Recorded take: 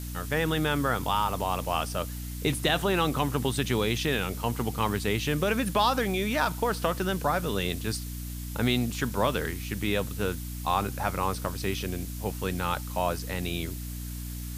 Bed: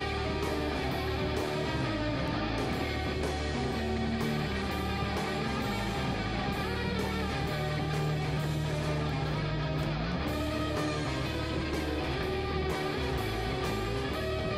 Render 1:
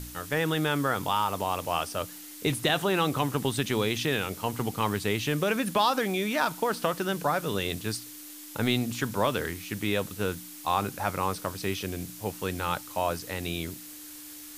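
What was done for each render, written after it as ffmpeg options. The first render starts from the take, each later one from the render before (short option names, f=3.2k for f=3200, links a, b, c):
-af "bandreject=f=60:t=h:w=4,bandreject=f=120:t=h:w=4,bandreject=f=180:t=h:w=4,bandreject=f=240:t=h:w=4"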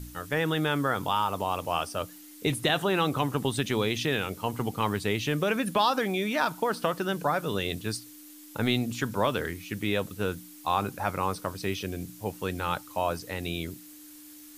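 -af "afftdn=nr=7:nf=-44"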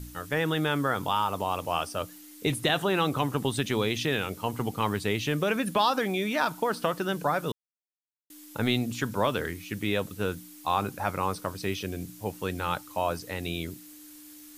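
-filter_complex "[0:a]asplit=3[a][b][c];[a]atrim=end=7.52,asetpts=PTS-STARTPTS,afade=t=out:st=7.516:d=0.004:c=hsin[d];[b]atrim=start=7.52:end=8.3,asetpts=PTS-STARTPTS,volume=0[e];[c]atrim=start=8.3,asetpts=PTS-STARTPTS,afade=t=in:d=0.004:c=hsin[f];[d][e][f]concat=n=3:v=0:a=1"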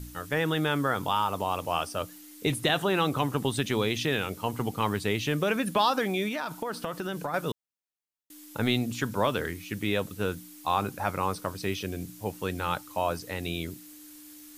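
-filter_complex "[0:a]asettb=1/sr,asplit=3[a][b][c];[a]atrim=end=6.284[d];[b]atrim=start=6.28:end=7.34,asetpts=PTS-STARTPTS,afade=t=in:d=0.004:c=qsin,afade=t=out:st=1.056:d=0.004:c=qsin,acompressor=threshold=-28dB:ratio=6:attack=3.2:release=140:knee=1:detection=peak[e];[c]atrim=start=7.336[f];[d][e]acrossfade=d=0.004:c1=hsin:c2=qsin[g];[g][f]acrossfade=d=0.004:c1=qsin:c2=hsin"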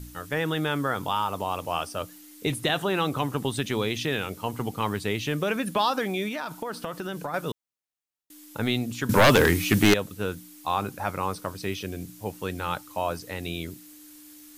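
-filter_complex "[0:a]asettb=1/sr,asplit=3[a][b][c];[a]atrim=end=9.094[d];[b]atrim=start=9.09:end=9.94,asetpts=PTS-STARTPTS,afade=t=in:d=0.004:c=qsin,afade=t=out:st=0.846:d=0.004:c=qsin,aeval=exprs='0.266*sin(PI/2*3.55*val(0)/0.266)':c=same[e];[c]atrim=start=9.936[f];[d][e]acrossfade=d=0.004:c1=hsin:c2=qsin[g];[g][f]acrossfade=d=0.004:c1=qsin:c2=hsin"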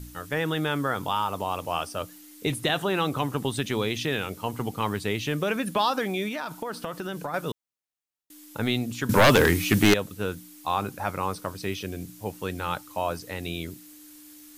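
-af anull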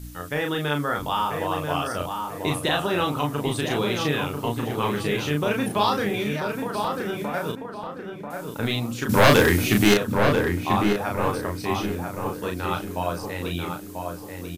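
-filter_complex "[0:a]asplit=2[a][b];[b]adelay=34,volume=-3dB[c];[a][c]amix=inputs=2:normalize=0,asplit=2[d][e];[e]adelay=990,lowpass=f=1.9k:p=1,volume=-4.5dB,asplit=2[f][g];[g]adelay=990,lowpass=f=1.9k:p=1,volume=0.39,asplit=2[h][i];[i]adelay=990,lowpass=f=1.9k:p=1,volume=0.39,asplit=2[j][k];[k]adelay=990,lowpass=f=1.9k:p=1,volume=0.39,asplit=2[l][m];[m]adelay=990,lowpass=f=1.9k:p=1,volume=0.39[n];[d][f][h][j][l][n]amix=inputs=6:normalize=0"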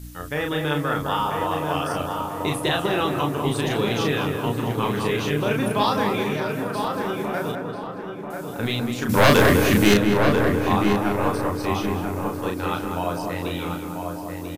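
-filter_complex "[0:a]asplit=2[a][b];[b]adelay=200,lowpass=f=1.7k:p=1,volume=-4dB,asplit=2[c][d];[d]adelay=200,lowpass=f=1.7k:p=1,volume=0.51,asplit=2[e][f];[f]adelay=200,lowpass=f=1.7k:p=1,volume=0.51,asplit=2[g][h];[h]adelay=200,lowpass=f=1.7k:p=1,volume=0.51,asplit=2[i][j];[j]adelay=200,lowpass=f=1.7k:p=1,volume=0.51,asplit=2[k][l];[l]adelay=200,lowpass=f=1.7k:p=1,volume=0.51,asplit=2[m][n];[n]adelay=200,lowpass=f=1.7k:p=1,volume=0.51[o];[a][c][e][g][i][k][m][o]amix=inputs=8:normalize=0"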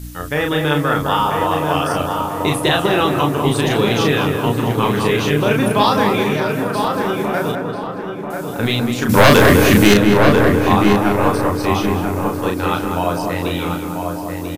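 -af "volume=7dB,alimiter=limit=-1dB:level=0:latency=1"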